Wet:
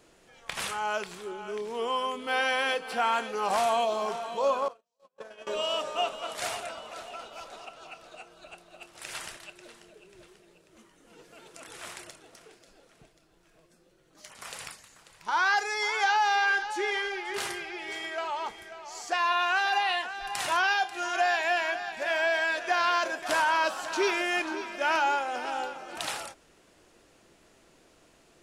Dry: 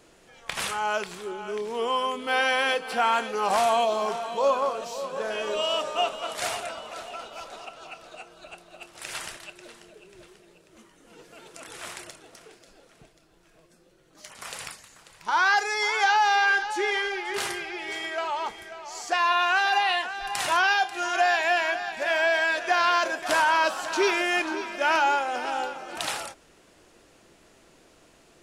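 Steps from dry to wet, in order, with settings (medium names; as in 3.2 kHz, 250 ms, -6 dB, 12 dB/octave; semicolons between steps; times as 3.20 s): 4.68–5.47 s: gate -27 dBFS, range -47 dB; trim -3.5 dB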